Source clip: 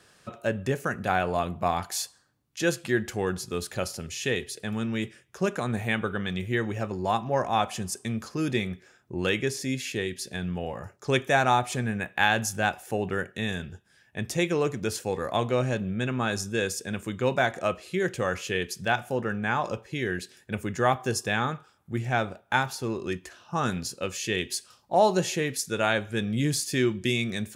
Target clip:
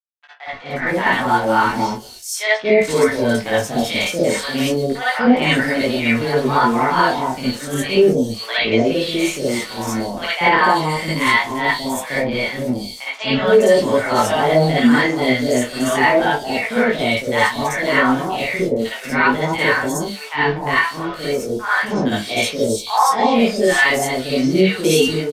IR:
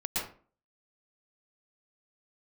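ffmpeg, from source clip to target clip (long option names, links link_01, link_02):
-filter_complex "[0:a]acrossover=split=140|6300[link_01][link_02][link_03];[link_02]dynaudnorm=framelen=330:gausssize=5:maxgain=12.5dB[link_04];[link_01][link_04][link_03]amix=inputs=3:normalize=0,aeval=exprs='val(0)*gte(abs(val(0)),0.0299)':channel_layout=same,asetrate=50951,aresample=44100,atempo=0.865537,flanger=delay=19.5:depth=6.5:speed=0.33,acrossover=split=710|4000[link_05][link_06][link_07];[link_05]adelay=260[link_08];[link_07]adelay=510[link_09];[link_08][link_06][link_09]amix=inputs=3:normalize=0[link_10];[1:a]atrim=start_sample=2205,asetrate=83790,aresample=44100[link_11];[link_10][link_11]afir=irnorm=-1:irlink=0,asetrate=48000,aresample=44100,aresample=32000,aresample=44100,alimiter=level_in=8.5dB:limit=-1dB:release=50:level=0:latency=1,volume=-2.5dB"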